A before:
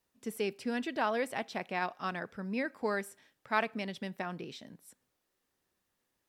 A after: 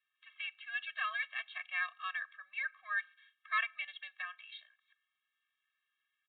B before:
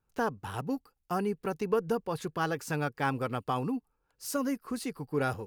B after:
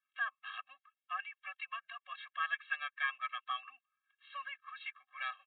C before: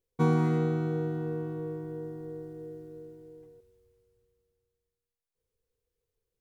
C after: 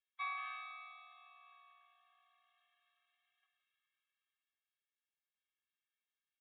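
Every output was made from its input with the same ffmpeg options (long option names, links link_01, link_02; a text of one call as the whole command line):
ffmpeg -i in.wav -af "asuperpass=centerf=3100:order=8:qfactor=0.57,aresample=8000,aresample=44100,afftfilt=real='re*eq(mod(floor(b*sr/1024/260),2),0)':imag='im*eq(mod(floor(b*sr/1024/260),2),0)':win_size=1024:overlap=0.75,volume=6dB" out.wav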